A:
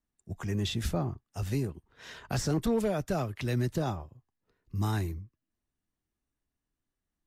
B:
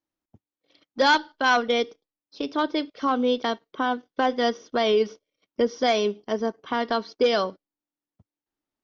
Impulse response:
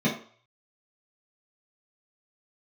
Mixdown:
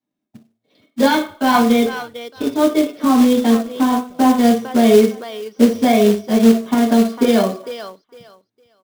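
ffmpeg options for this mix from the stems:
-filter_complex "[0:a]acompressor=threshold=-32dB:ratio=6,adelay=1000,volume=-13.5dB[a];[1:a]lowshelf=f=140:g=-7,volume=-2.5dB,asplit=3[b][c][d];[c]volume=-5.5dB[e];[d]volume=-5.5dB[f];[2:a]atrim=start_sample=2205[g];[e][g]afir=irnorm=-1:irlink=0[h];[f]aecho=0:1:457|914|1371:1|0.21|0.0441[i];[a][b][h][i]amix=inputs=4:normalize=0,acrusher=bits=4:mode=log:mix=0:aa=0.000001"

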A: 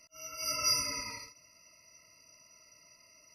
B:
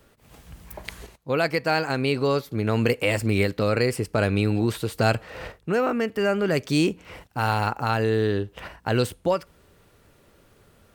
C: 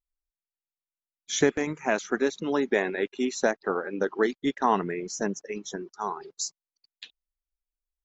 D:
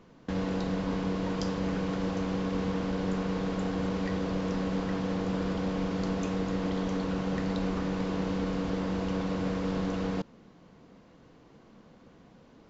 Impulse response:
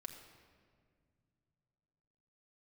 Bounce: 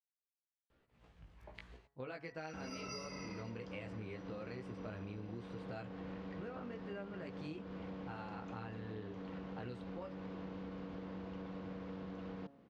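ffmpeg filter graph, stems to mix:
-filter_complex "[0:a]adelay=2250,volume=-1.5dB[a];[1:a]flanger=delay=15:depth=4.4:speed=0.8,adelay=700,volume=-12.5dB[b];[3:a]acontrast=88,highpass=53,adelay=2250,volume=-17dB[c];[a][b][c]amix=inputs=3:normalize=0,lowpass=3.4k,bandreject=f=139.2:t=h:w=4,bandreject=f=278.4:t=h:w=4,bandreject=f=417.6:t=h:w=4,bandreject=f=556.8:t=h:w=4,bandreject=f=696:t=h:w=4,bandreject=f=835.2:t=h:w=4,bandreject=f=974.4:t=h:w=4,bandreject=f=1.1136k:t=h:w=4,bandreject=f=1.2528k:t=h:w=4,bandreject=f=1.392k:t=h:w=4,bandreject=f=1.5312k:t=h:w=4,bandreject=f=1.6704k:t=h:w=4,bandreject=f=1.8096k:t=h:w=4,bandreject=f=1.9488k:t=h:w=4,acompressor=threshold=-43dB:ratio=6"

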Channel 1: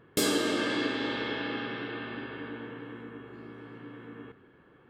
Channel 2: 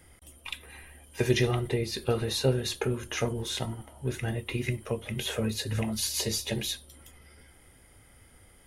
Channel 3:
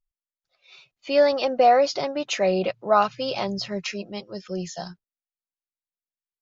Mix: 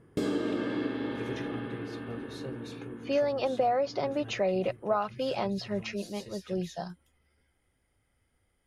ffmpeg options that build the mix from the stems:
-filter_complex "[0:a]lowshelf=f=470:g=9,volume=-6dB[a];[1:a]volume=-16.5dB[b];[2:a]adelay=2000,volume=-2dB[c];[a][c]amix=inputs=2:normalize=0,highshelf=f=2.6k:g=-9,acompressor=threshold=-24dB:ratio=6,volume=0dB[d];[b][d]amix=inputs=2:normalize=0,highshelf=f=9.9k:g=-11.5"

